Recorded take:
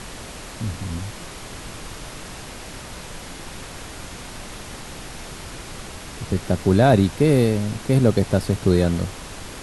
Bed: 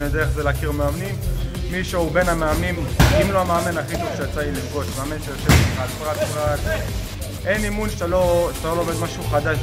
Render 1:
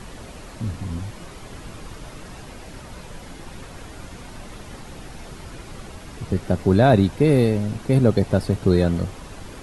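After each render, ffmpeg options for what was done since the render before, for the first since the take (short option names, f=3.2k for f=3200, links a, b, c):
-af "afftdn=nr=8:nf=-37"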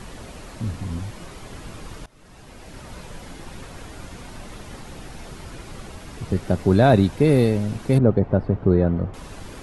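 -filter_complex "[0:a]asettb=1/sr,asplit=3[a][b][c];[a]atrim=end=7.984[d];[b]atrim=start=7.98:end=9.14,asetpts=PTS-STARTPTS,afade=t=in:d=0.004:c=qsin,afade=t=out:st=1.156:d=0.004:c=qsin,lowpass=1.3k[e];[c]atrim=start=9.136[f];[d][e]acrossfade=d=0.004:c1=hsin:c2=qsin[g];[g][f]acrossfade=d=0.004:c1=qsin:c2=hsin,asplit=2[h][i];[h]atrim=end=2.06,asetpts=PTS-STARTPTS,afade=t=out:st=2.056:d=0.004:c=hsin:silence=0.0794328[j];[i]atrim=start=2.06,asetpts=PTS-STARTPTS,afade=t=in:d=0.84:silence=0.0794328[k];[j][k]concat=n=2:v=0:a=1"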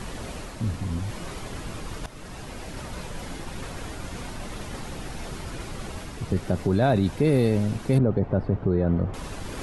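-af "areverse,acompressor=mode=upward:threshold=-28dB:ratio=2.5,areverse,alimiter=limit=-12.5dB:level=0:latency=1:release=22"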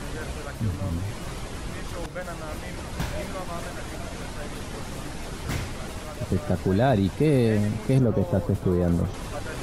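-filter_complex "[1:a]volume=-17dB[a];[0:a][a]amix=inputs=2:normalize=0"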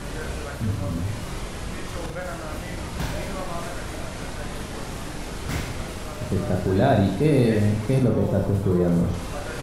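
-af "aecho=1:1:40|88|145.6|214.7|297.7:0.631|0.398|0.251|0.158|0.1"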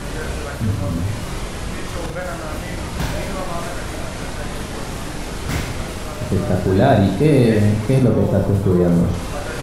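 -af "volume=5.5dB,alimiter=limit=-3dB:level=0:latency=1"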